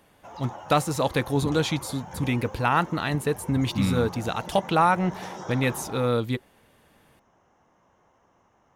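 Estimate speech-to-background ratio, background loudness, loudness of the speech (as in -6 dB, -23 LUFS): 14.5 dB, -40.0 LUFS, -25.5 LUFS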